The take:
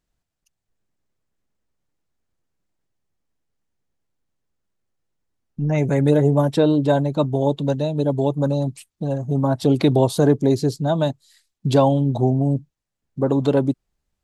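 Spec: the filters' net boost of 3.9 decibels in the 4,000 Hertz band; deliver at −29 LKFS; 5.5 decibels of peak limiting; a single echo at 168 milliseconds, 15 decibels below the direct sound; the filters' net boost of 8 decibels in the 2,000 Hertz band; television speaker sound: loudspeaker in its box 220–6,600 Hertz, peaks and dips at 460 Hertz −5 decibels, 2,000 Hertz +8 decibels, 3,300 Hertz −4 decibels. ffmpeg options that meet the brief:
ffmpeg -i in.wav -af "equalizer=frequency=2000:width_type=o:gain=4.5,equalizer=frequency=4000:width_type=o:gain=5,alimiter=limit=-9.5dB:level=0:latency=1,highpass=frequency=220:width=0.5412,highpass=frequency=220:width=1.3066,equalizer=frequency=460:width_type=q:width=4:gain=-5,equalizer=frequency=2000:width_type=q:width=4:gain=8,equalizer=frequency=3300:width_type=q:width=4:gain=-4,lowpass=frequency=6600:width=0.5412,lowpass=frequency=6600:width=1.3066,aecho=1:1:168:0.178,volume=-5.5dB" out.wav

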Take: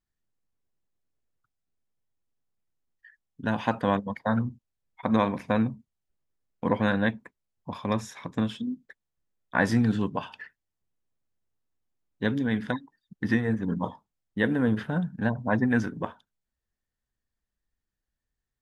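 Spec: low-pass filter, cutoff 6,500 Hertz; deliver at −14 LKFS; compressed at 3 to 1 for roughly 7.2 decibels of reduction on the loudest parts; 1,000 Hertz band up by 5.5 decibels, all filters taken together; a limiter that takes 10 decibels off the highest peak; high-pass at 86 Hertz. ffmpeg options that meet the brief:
ffmpeg -i in.wav -af "highpass=86,lowpass=6500,equalizer=frequency=1000:width_type=o:gain=6.5,acompressor=threshold=-25dB:ratio=3,volume=19.5dB,alimiter=limit=-1dB:level=0:latency=1" out.wav

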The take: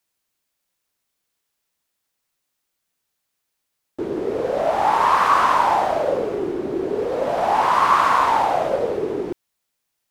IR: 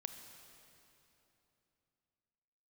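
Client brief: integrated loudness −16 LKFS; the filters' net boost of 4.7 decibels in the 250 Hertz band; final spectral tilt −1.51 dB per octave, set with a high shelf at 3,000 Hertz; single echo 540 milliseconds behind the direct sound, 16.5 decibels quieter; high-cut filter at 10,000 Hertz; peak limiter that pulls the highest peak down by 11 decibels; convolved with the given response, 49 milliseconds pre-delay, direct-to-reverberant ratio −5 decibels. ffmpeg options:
-filter_complex "[0:a]lowpass=10000,equalizer=frequency=250:width_type=o:gain=7,highshelf=frequency=3000:gain=-4.5,alimiter=limit=-14.5dB:level=0:latency=1,aecho=1:1:540:0.15,asplit=2[link_01][link_02];[1:a]atrim=start_sample=2205,adelay=49[link_03];[link_02][link_03]afir=irnorm=-1:irlink=0,volume=8dB[link_04];[link_01][link_04]amix=inputs=2:normalize=0,volume=0.5dB"

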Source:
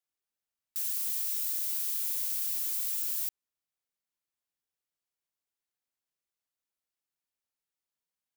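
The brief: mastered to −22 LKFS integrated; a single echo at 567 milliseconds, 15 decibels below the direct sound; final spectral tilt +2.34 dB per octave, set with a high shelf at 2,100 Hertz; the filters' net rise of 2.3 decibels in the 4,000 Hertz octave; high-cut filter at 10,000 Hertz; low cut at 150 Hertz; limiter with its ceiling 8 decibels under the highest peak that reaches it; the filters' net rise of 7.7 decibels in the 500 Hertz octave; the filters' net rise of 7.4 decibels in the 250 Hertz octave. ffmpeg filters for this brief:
ffmpeg -i in.wav -af "highpass=150,lowpass=10000,equalizer=frequency=250:width_type=o:gain=7,equalizer=frequency=500:width_type=o:gain=8.5,highshelf=frequency=2100:gain=-4.5,equalizer=frequency=4000:width_type=o:gain=7.5,alimiter=level_in=14dB:limit=-24dB:level=0:latency=1,volume=-14dB,aecho=1:1:567:0.178,volume=23dB" out.wav

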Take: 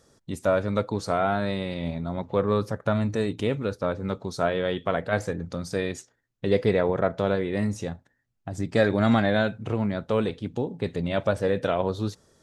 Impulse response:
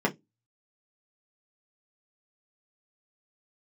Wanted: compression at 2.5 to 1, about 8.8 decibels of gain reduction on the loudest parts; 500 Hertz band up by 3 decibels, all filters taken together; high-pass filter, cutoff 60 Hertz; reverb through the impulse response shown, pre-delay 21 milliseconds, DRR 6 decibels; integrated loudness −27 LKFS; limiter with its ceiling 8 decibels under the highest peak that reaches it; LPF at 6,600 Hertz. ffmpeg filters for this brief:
-filter_complex "[0:a]highpass=60,lowpass=6600,equalizer=frequency=500:width_type=o:gain=3.5,acompressor=threshold=-28dB:ratio=2.5,alimiter=limit=-20dB:level=0:latency=1,asplit=2[link_01][link_02];[1:a]atrim=start_sample=2205,adelay=21[link_03];[link_02][link_03]afir=irnorm=-1:irlink=0,volume=-17.5dB[link_04];[link_01][link_04]amix=inputs=2:normalize=0,volume=3dB"

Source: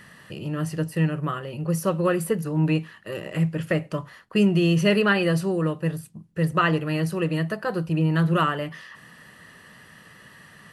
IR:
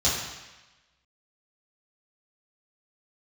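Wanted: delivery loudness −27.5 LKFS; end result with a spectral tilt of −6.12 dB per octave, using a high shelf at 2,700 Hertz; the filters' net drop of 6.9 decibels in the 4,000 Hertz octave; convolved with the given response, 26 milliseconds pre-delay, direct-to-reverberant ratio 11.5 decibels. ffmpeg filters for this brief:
-filter_complex "[0:a]highshelf=frequency=2700:gain=-3.5,equalizer=frequency=4000:width_type=o:gain=-8.5,asplit=2[link_01][link_02];[1:a]atrim=start_sample=2205,adelay=26[link_03];[link_02][link_03]afir=irnorm=-1:irlink=0,volume=-24.5dB[link_04];[link_01][link_04]amix=inputs=2:normalize=0,volume=-4dB"

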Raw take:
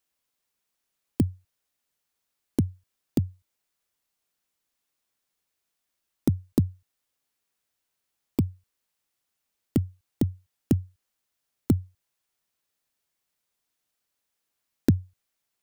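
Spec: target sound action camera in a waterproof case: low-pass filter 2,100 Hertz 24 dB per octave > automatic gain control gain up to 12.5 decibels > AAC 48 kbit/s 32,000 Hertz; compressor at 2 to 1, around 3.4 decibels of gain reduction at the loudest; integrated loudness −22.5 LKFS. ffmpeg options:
ffmpeg -i in.wav -af "acompressor=threshold=-22dB:ratio=2,lowpass=frequency=2100:width=0.5412,lowpass=frequency=2100:width=1.3066,dynaudnorm=maxgain=12.5dB,volume=9dB" -ar 32000 -c:a aac -b:a 48k out.aac

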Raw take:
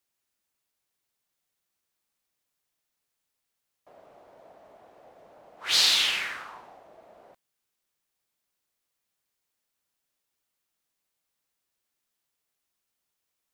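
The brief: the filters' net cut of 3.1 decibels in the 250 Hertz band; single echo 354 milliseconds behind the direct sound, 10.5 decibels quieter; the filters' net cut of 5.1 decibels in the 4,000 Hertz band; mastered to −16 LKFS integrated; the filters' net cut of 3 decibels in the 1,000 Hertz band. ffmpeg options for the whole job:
ffmpeg -i in.wav -af "equalizer=frequency=250:width_type=o:gain=-4,equalizer=frequency=1000:width_type=o:gain=-3.5,equalizer=frequency=4000:width_type=o:gain=-6,aecho=1:1:354:0.299,volume=11.5dB" out.wav

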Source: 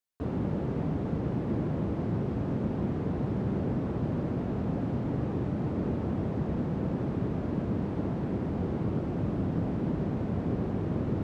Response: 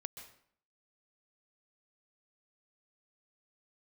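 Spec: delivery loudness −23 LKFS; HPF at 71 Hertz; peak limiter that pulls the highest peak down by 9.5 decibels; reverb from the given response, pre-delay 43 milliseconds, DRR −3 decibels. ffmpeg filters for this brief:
-filter_complex "[0:a]highpass=71,alimiter=level_in=2.5dB:limit=-24dB:level=0:latency=1,volume=-2.5dB,asplit=2[link_01][link_02];[1:a]atrim=start_sample=2205,adelay=43[link_03];[link_02][link_03]afir=irnorm=-1:irlink=0,volume=6dB[link_04];[link_01][link_04]amix=inputs=2:normalize=0,volume=7dB"

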